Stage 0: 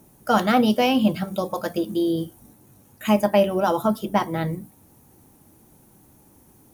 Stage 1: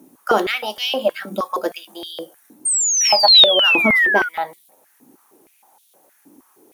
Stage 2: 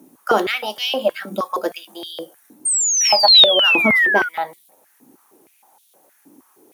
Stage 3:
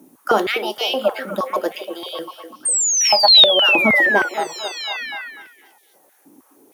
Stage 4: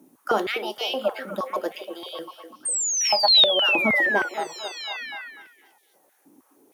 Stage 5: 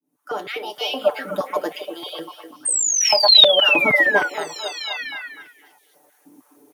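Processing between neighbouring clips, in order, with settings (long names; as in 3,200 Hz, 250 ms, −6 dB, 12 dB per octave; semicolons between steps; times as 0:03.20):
sound drawn into the spectrogram fall, 0:02.65–0:04.29, 1,400–8,800 Hz −18 dBFS; high-pass on a step sequencer 6.4 Hz 270–3,500 Hz
high-pass filter 74 Hz 24 dB per octave
echo through a band-pass that steps 248 ms, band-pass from 360 Hz, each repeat 0.7 octaves, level −6 dB
high-shelf EQ 10,000 Hz −3 dB; level −6 dB
fade in at the beginning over 1.16 s; comb filter 6.8 ms, depth 73%; level +3 dB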